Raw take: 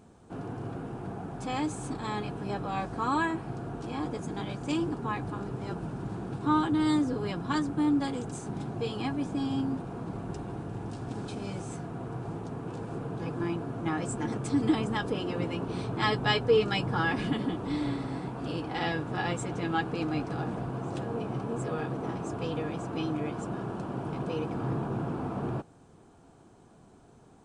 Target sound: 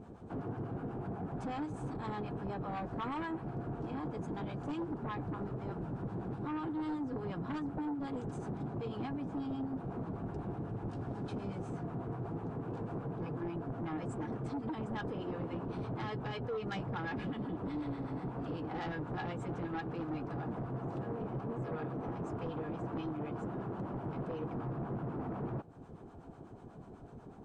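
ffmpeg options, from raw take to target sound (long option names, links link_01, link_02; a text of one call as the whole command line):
ffmpeg -i in.wav -filter_complex "[0:a]lowpass=frequency=1100:poles=1,alimiter=limit=-20.5dB:level=0:latency=1:release=221,acompressor=threshold=-43dB:ratio=2.5,acrossover=split=720[link_01][link_02];[link_01]aeval=exprs='val(0)*(1-0.7/2+0.7/2*cos(2*PI*8.1*n/s))':channel_layout=same[link_03];[link_02]aeval=exprs='val(0)*(1-0.7/2-0.7/2*cos(2*PI*8.1*n/s))':channel_layout=same[link_04];[link_03][link_04]amix=inputs=2:normalize=0,aeval=exprs='0.0237*sin(PI/2*2*val(0)/0.0237)':channel_layout=same,volume=-1dB" out.wav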